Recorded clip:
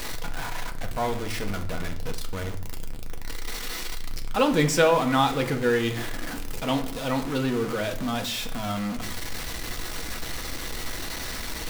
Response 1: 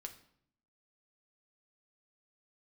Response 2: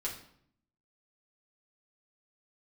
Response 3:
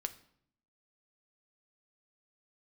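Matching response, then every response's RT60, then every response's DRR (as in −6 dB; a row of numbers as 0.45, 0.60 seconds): 1; 0.65, 0.65, 0.65 seconds; 4.0, −5.0, 8.0 decibels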